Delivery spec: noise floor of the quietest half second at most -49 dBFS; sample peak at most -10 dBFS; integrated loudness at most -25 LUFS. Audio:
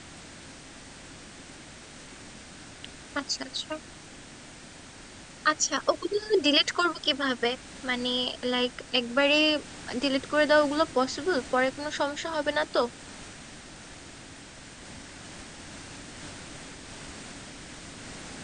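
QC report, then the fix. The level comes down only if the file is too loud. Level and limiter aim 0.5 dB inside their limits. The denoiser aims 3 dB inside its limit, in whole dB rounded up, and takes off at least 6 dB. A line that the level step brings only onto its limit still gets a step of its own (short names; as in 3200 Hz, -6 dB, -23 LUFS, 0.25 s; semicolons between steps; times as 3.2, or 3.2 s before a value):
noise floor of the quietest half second -47 dBFS: fail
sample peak -8.5 dBFS: fail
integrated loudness -26.5 LUFS: OK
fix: denoiser 6 dB, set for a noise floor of -47 dBFS; limiter -10.5 dBFS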